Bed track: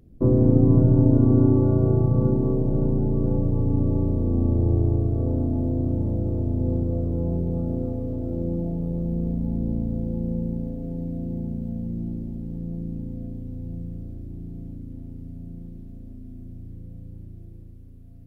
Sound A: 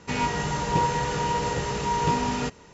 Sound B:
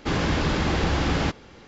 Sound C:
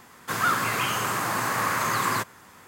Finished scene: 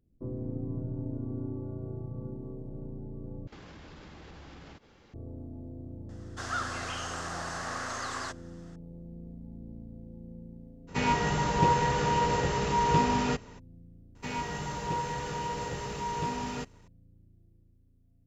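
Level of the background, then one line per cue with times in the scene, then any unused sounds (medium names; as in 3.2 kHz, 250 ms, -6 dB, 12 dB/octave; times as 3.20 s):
bed track -19 dB
3.47 s: replace with B -11.5 dB + compression 8:1, threshold -34 dBFS
6.09 s: add C -8 dB + cabinet simulation 450–7500 Hz, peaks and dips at 690 Hz +5 dB, 1 kHz -8 dB, 2.3 kHz -10 dB, 5.6 kHz +5 dB
10.87 s: add A -0.5 dB, fades 0.02 s + treble shelf 5.6 kHz -6 dB
14.15 s: add A -12 dB + waveshaping leveller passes 1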